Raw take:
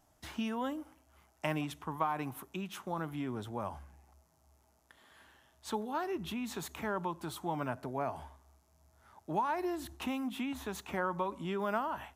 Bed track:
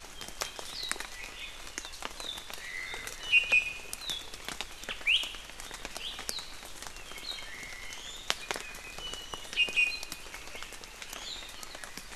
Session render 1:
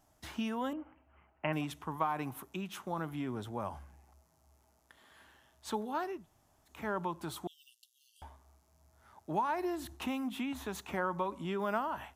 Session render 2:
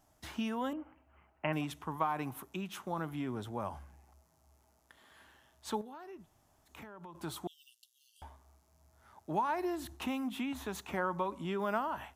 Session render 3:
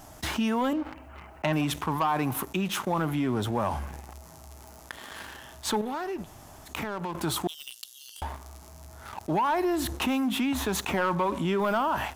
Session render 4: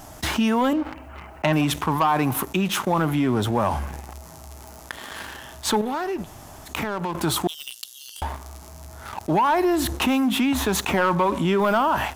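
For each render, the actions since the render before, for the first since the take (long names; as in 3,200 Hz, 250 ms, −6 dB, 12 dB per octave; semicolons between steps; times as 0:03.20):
0:00.73–0:01.53: Butterworth low-pass 3,000 Hz 96 dB per octave; 0:06.15–0:06.77: fill with room tone, crossfade 0.24 s; 0:07.47–0:08.22: linear-phase brick-wall high-pass 2,700 Hz
0:05.81–0:07.15: downward compressor 10 to 1, threshold −45 dBFS
leveller curve on the samples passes 2; envelope flattener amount 50%
level +6 dB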